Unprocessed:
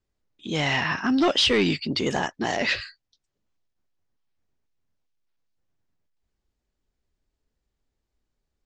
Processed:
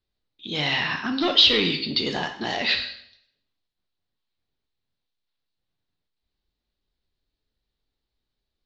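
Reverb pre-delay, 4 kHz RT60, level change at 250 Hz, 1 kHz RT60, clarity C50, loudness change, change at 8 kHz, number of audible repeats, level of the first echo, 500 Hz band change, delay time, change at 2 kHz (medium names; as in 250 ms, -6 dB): 5 ms, 0.65 s, -3.5 dB, 0.65 s, 9.0 dB, +2.0 dB, -7.0 dB, no echo, no echo, -3.0 dB, no echo, 0.0 dB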